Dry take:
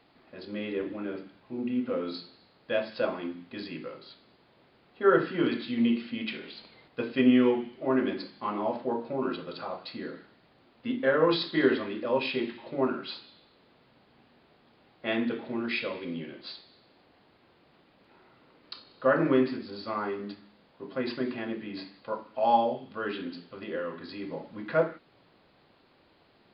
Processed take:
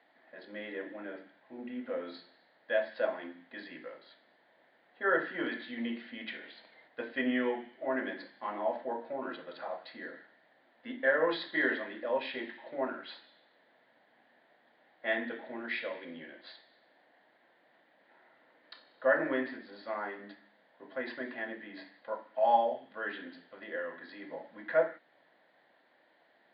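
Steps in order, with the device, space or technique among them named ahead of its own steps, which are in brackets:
phone earpiece (loudspeaker in its box 380–3,500 Hz, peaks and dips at 400 Hz −8 dB, 650 Hz +4 dB, 1,200 Hz −8 dB, 1,800 Hz +10 dB, 2,600 Hz −9 dB)
level −2.5 dB

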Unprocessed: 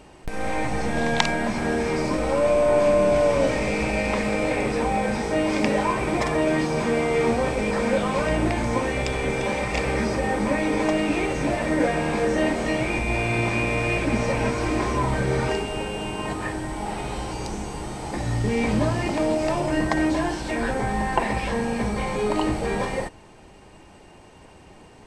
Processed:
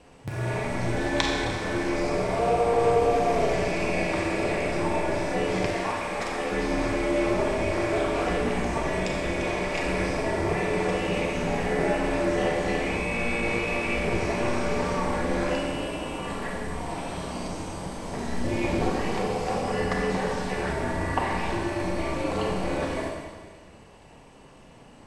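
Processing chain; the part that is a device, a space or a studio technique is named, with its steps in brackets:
alien voice (ring modulation 120 Hz; flanger 1.5 Hz, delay 3.3 ms, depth 7.5 ms, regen −55%)
0:05.66–0:06.52: low-shelf EQ 490 Hz −10 dB
four-comb reverb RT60 1.6 s, combs from 29 ms, DRR 0 dB
level +1.5 dB

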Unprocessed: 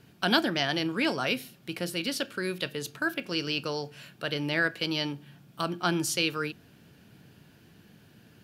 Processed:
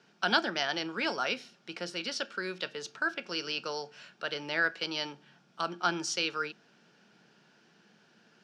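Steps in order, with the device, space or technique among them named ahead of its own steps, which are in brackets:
television speaker (loudspeaker in its box 200–6,900 Hz, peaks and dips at 280 Hz −9 dB, 850 Hz +4 dB, 1,400 Hz +6 dB, 5,500 Hz +6 dB)
level −4 dB

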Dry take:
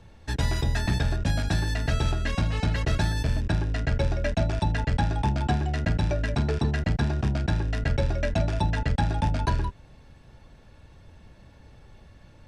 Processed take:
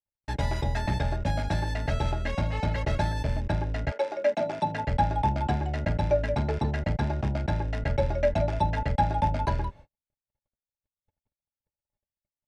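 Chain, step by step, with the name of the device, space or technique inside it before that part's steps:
inside a helmet (high-shelf EQ 4,700 Hz −7 dB; hollow resonant body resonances 590/840/2,100 Hz, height 12 dB, ringing for 50 ms)
noise gate −42 dBFS, range −56 dB
0:03.90–0:04.86: high-pass filter 450 Hz → 110 Hz 24 dB per octave
level −3 dB

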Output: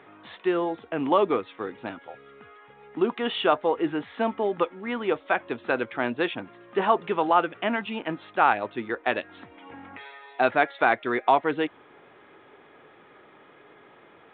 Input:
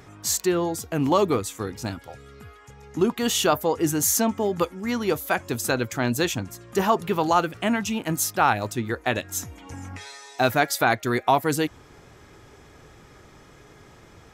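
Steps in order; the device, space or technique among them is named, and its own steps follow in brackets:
telephone (band-pass filter 310–3,200 Hz; mu-law 64 kbit/s 8,000 Hz)

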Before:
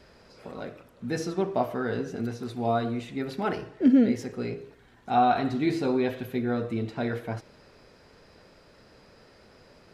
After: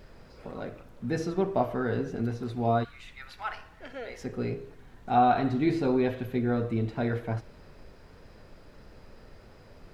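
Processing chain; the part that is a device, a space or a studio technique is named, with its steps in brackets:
0:02.83–0:04.23: high-pass filter 1,400 Hz → 560 Hz 24 dB per octave
car interior (parametric band 110 Hz +4 dB; high-shelf EQ 3,900 Hz −8 dB; brown noise bed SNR 20 dB)

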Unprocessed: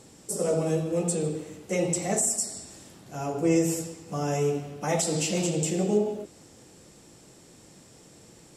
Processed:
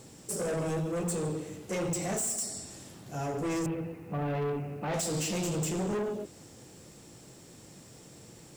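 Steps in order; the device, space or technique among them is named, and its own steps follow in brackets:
0:03.66–0:04.94: Butterworth low-pass 2,800 Hz 96 dB per octave
open-reel tape (soft clipping −29 dBFS, distortion −7 dB; parametric band 120 Hz +4 dB 0.82 octaves; white noise bed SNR 35 dB)

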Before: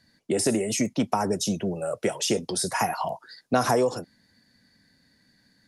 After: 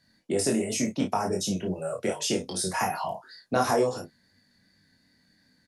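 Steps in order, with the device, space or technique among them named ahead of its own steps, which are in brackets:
double-tracked vocal (double-tracking delay 32 ms −6 dB; chorus effect 2.7 Hz, delay 20 ms, depth 2.5 ms)

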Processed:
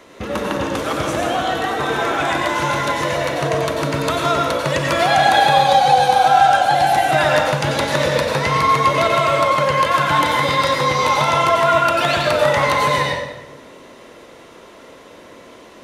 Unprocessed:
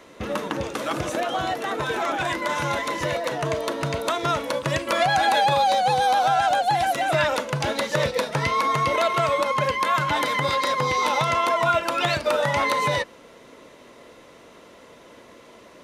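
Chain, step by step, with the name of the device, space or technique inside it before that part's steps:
bathroom (convolution reverb RT60 1.0 s, pre-delay 86 ms, DRR −0.5 dB)
level +3 dB

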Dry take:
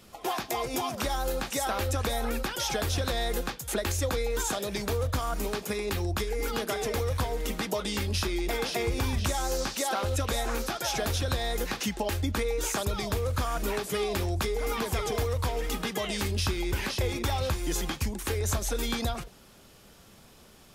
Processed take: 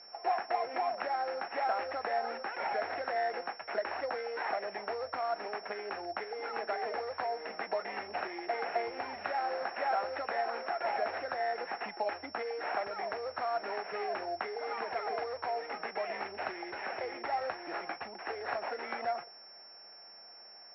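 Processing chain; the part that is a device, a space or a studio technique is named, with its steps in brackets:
toy sound module (linearly interpolated sample-rate reduction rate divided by 8×; switching amplifier with a slow clock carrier 5,400 Hz; loudspeaker in its box 700–4,100 Hz, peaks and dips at 710 Hz +8 dB, 1,100 Hz −6 dB, 3,300 Hz −10 dB)

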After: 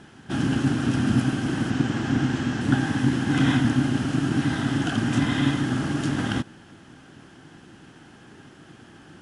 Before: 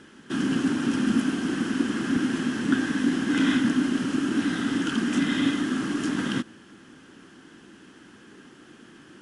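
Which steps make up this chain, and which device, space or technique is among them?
0:01.70–0:02.61: low-pass filter 8,200 Hz 24 dB per octave
octave pedal (pitch-shifted copies added −12 semitones −3 dB)

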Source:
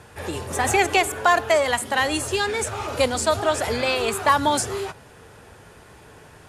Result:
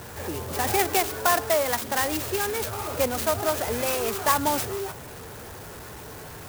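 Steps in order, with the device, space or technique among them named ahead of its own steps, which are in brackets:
early CD player with a faulty converter (converter with a step at zero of −32 dBFS; converter with an unsteady clock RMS 0.076 ms)
level −4.5 dB

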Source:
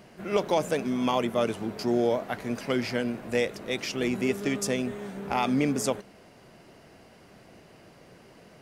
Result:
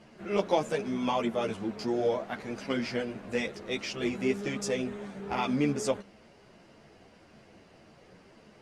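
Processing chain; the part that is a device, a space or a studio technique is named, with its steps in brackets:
string-machine ensemble chorus (string-ensemble chorus; low-pass filter 7,700 Hz 12 dB per octave)

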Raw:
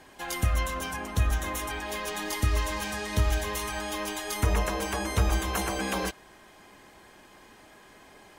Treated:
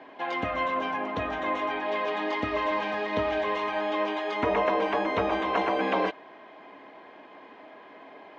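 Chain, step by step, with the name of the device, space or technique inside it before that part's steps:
kitchen radio (loudspeaker in its box 220–3,500 Hz, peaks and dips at 280 Hz +9 dB, 460 Hz +6 dB, 660 Hz +10 dB, 1,000 Hz +7 dB, 2,100 Hz +4 dB)

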